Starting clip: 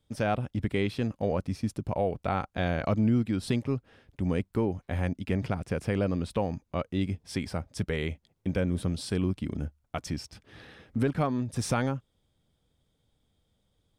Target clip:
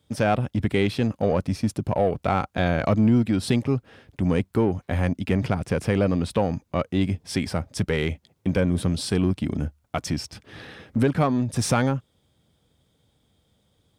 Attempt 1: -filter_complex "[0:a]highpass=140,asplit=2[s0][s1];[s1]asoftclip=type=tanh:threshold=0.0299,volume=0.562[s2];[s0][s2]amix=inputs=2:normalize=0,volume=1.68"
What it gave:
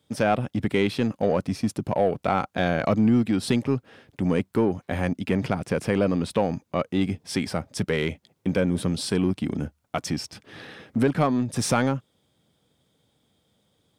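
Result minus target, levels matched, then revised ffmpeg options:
125 Hz band -3.0 dB
-filter_complex "[0:a]highpass=68,asplit=2[s0][s1];[s1]asoftclip=type=tanh:threshold=0.0299,volume=0.562[s2];[s0][s2]amix=inputs=2:normalize=0,volume=1.68"

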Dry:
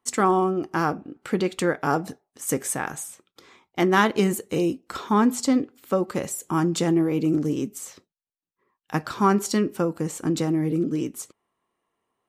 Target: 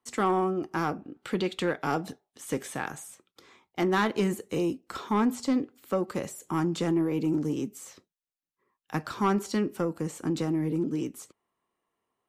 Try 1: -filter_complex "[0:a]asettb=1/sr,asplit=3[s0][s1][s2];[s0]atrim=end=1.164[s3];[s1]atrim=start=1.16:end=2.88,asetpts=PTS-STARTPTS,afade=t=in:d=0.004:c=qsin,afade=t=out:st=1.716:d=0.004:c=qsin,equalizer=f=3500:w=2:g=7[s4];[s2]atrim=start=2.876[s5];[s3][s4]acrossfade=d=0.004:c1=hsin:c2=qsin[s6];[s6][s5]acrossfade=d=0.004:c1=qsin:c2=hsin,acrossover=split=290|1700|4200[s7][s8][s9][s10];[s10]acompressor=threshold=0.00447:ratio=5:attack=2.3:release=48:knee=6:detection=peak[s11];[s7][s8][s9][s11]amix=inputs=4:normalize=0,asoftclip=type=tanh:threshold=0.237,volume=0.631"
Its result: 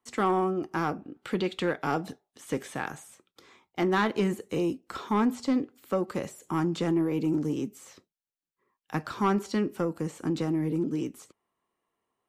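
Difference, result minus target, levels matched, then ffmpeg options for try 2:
compression: peak gain reduction +7 dB
-filter_complex "[0:a]asettb=1/sr,asplit=3[s0][s1][s2];[s0]atrim=end=1.164[s3];[s1]atrim=start=1.16:end=2.88,asetpts=PTS-STARTPTS,afade=t=in:d=0.004:c=qsin,afade=t=out:st=1.716:d=0.004:c=qsin,equalizer=f=3500:w=2:g=7[s4];[s2]atrim=start=2.876[s5];[s3][s4]acrossfade=d=0.004:c1=hsin:c2=qsin[s6];[s6][s5]acrossfade=d=0.004:c1=qsin:c2=hsin,acrossover=split=290|1700|4200[s7][s8][s9][s10];[s10]acompressor=threshold=0.0126:ratio=5:attack=2.3:release=48:knee=6:detection=peak[s11];[s7][s8][s9][s11]amix=inputs=4:normalize=0,asoftclip=type=tanh:threshold=0.237,volume=0.631"

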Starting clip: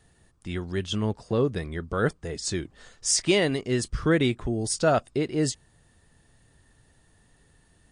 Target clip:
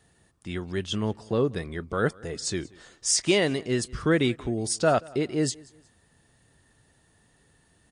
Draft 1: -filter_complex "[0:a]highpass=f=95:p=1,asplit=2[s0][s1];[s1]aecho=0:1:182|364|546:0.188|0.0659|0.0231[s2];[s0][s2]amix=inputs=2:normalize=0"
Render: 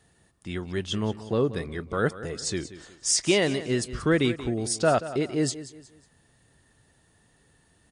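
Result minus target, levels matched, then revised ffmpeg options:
echo-to-direct +9.5 dB
-filter_complex "[0:a]highpass=f=95:p=1,asplit=2[s0][s1];[s1]aecho=0:1:182|364:0.0631|0.0221[s2];[s0][s2]amix=inputs=2:normalize=0"

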